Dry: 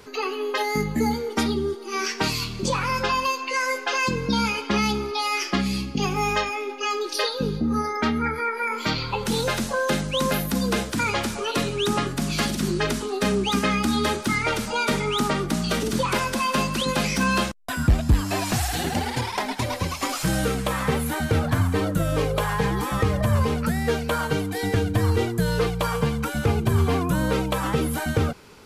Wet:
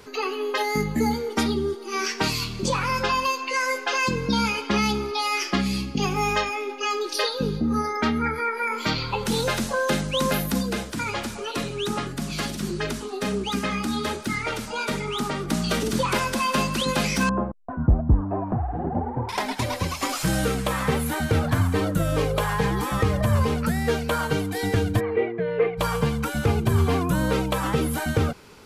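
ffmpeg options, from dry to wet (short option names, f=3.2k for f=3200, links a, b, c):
-filter_complex "[0:a]asplit=3[a][b][c];[a]afade=t=out:st=10.61:d=0.02[d];[b]flanger=delay=0.4:depth=7.1:regen=-62:speed=1.4:shape=sinusoidal,afade=t=in:st=10.61:d=0.02,afade=t=out:st=15.47:d=0.02[e];[c]afade=t=in:st=15.47:d=0.02[f];[d][e][f]amix=inputs=3:normalize=0,asettb=1/sr,asplit=3[g][h][i];[g]atrim=end=17.294[j];[h]atrim=start=17.29:end=19.29,asetpts=PTS-STARTPTS,afade=t=in:d=0.004:c=qsin,afade=t=out:st=1.996:d=0.004:c=qsin,lowpass=f=1k:w=0.5412,lowpass=f=1k:w=1.3066[k];[i]atrim=start=19.286[l];[j][k]acrossfade=d=0.004:c1=hsin:c2=qsin[m];[m][l]acrossfade=d=0.004:c1=qsin:c2=hsin,asplit=3[n][o][p];[n]afade=t=out:st=24.99:d=0.02[q];[o]highpass=270,equalizer=f=270:t=q:w=4:g=-7,equalizer=f=440:t=q:w=4:g=5,equalizer=f=640:t=q:w=4:g=3,equalizer=f=940:t=q:w=4:g=-7,equalizer=f=1.4k:t=q:w=4:g=-10,equalizer=f=2.2k:t=q:w=4:g=8,lowpass=f=2.2k:w=0.5412,lowpass=f=2.2k:w=1.3066,afade=t=in:st=24.99:d=0.02,afade=t=out:st=25.77:d=0.02[r];[p]afade=t=in:st=25.77:d=0.02[s];[q][r][s]amix=inputs=3:normalize=0"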